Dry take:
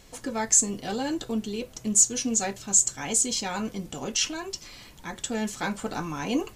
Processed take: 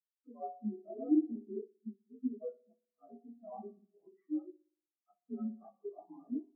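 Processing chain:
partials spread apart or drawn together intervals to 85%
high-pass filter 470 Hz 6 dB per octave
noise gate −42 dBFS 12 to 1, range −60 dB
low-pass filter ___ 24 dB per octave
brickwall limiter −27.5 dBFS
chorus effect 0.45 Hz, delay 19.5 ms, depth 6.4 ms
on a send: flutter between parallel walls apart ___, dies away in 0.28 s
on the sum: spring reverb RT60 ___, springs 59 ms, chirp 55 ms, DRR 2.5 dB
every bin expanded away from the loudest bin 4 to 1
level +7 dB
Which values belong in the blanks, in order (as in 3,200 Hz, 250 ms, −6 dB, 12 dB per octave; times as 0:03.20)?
1,400 Hz, 11.1 metres, 2.1 s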